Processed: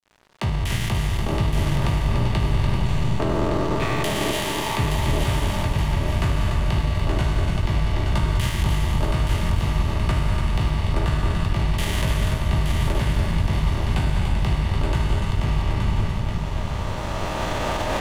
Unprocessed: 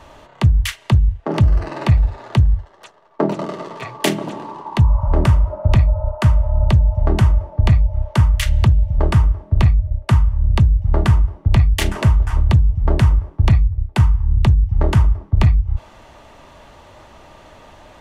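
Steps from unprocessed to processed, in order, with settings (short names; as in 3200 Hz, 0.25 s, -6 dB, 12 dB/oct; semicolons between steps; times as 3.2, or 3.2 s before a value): spectral trails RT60 2.18 s; recorder AGC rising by 12 dB/s; 4.31–4.77 HPF 790 Hz 24 dB/oct; limiter -10.5 dBFS, peak gain reduction 11 dB; on a send: multi-head echo 0.291 s, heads first and third, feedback 53%, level -6.5 dB; on the sum: crossover distortion -32 dBFS; gain -4.5 dB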